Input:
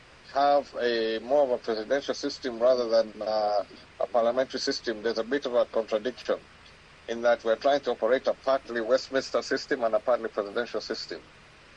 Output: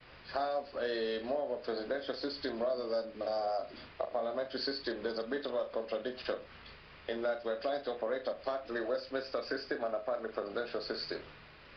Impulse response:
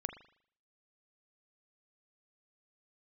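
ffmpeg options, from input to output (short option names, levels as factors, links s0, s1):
-filter_complex "[0:a]agate=range=0.0224:threshold=0.00355:ratio=3:detection=peak,acompressor=threshold=0.02:ratio=4,asplit=2[s0][s1];[1:a]atrim=start_sample=2205,atrim=end_sample=3528,adelay=40[s2];[s1][s2]afir=irnorm=-1:irlink=0,volume=0.447[s3];[s0][s3]amix=inputs=2:normalize=0,aresample=11025,aresample=44100"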